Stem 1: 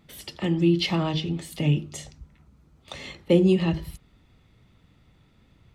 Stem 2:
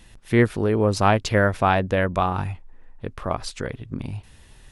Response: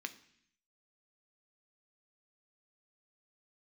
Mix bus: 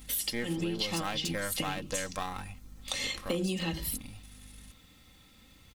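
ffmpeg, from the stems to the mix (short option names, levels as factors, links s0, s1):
-filter_complex "[0:a]volume=0.794[s0];[1:a]aeval=exprs='if(lt(val(0),0),0.447*val(0),val(0))':c=same,aeval=exprs='val(0)+0.0112*(sin(2*PI*50*n/s)+sin(2*PI*2*50*n/s)/2+sin(2*PI*3*50*n/s)/3+sin(2*PI*4*50*n/s)/4+sin(2*PI*5*50*n/s)/5)':c=same,volume=0.237,asplit=2[s1][s2];[s2]apad=whole_len=253165[s3];[s0][s3]sidechaincompress=threshold=0.0126:ratio=8:attack=9:release=113[s4];[s4][s1]amix=inputs=2:normalize=0,aecho=1:1:3.8:0.5,crystalizer=i=5.5:c=0,acompressor=threshold=0.0355:ratio=6"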